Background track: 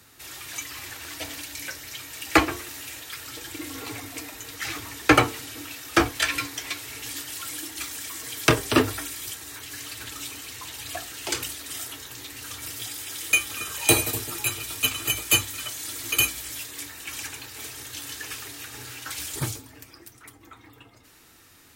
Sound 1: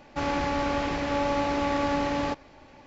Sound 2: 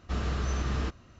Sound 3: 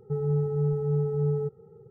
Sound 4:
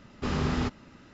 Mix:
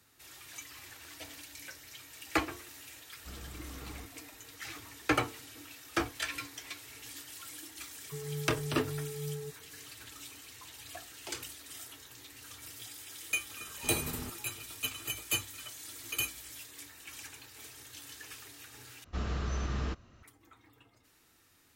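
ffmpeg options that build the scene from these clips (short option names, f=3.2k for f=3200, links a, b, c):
-filter_complex "[2:a]asplit=2[a][b];[0:a]volume=-12dB,asplit=2[c][d];[c]atrim=end=19.044[e];[b]atrim=end=1.19,asetpts=PTS-STARTPTS,volume=-4dB[f];[d]atrim=start=20.226[g];[a]atrim=end=1.19,asetpts=PTS-STARTPTS,volume=-17dB,afade=t=in:d=0.004:c=hsin,afade=t=out:st=1.186:d=0.004:c=hsin,adelay=3160[h];[3:a]atrim=end=1.9,asetpts=PTS-STARTPTS,volume=-13dB,afade=t=in:d=0.004:c=hsin,afade=t=out:st=1.896:d=0.004:c=hsin,adelay=353682S[i];[4:a]atrim=end=1.13,asetpts=PTS-STARTPTS,volume=-14dB,afade=t=in:d=0.004:c=hsin,afade=t=out:st=1.126:d=0.004:c=hsin,adelay=13610[j];[e][f]acrossfade=d=0.004:c1=hsin:c2=hsin[k];[k][g]acrossfade=d=0.004:c1=hsin:c2=hsin[l];[l][h][i][j]amix=inputs=4:normalize=0"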